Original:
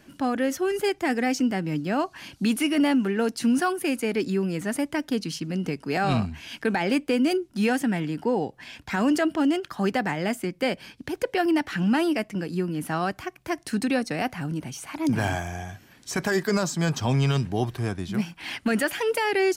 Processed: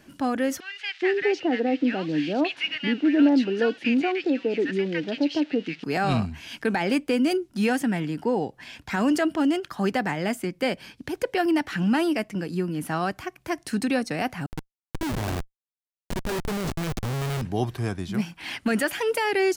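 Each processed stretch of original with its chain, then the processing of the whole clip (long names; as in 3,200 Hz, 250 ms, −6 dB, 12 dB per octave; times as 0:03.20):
0:00.60–0:05.84: spike at every zero crossing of −26 dBFS + loudspeaker in its box 180–4,000 Hz, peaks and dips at 210 Hz −4 dB, 300 Hz +6 dB, 500 Hz +5 dB, 1,100 Hz −8 dB, 1,800 Hz +4 dB, 2,700 Hz +5 dB + multiband delay without the direct sound highs, lows 420 ms, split 1,200 Hz
0:14.46–0:17.42: low-shelf EQ 150 Hz −3.5 dB + comparator with hysteresis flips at −24.5 dBFS
whole clip: no processing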